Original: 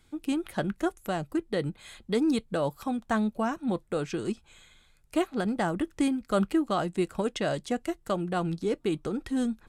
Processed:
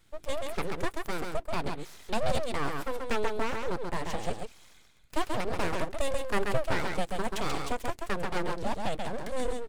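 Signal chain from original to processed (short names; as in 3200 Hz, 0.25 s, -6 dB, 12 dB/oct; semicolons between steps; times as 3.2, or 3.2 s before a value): echo 0.134 s -4 dB; full-wave rectifier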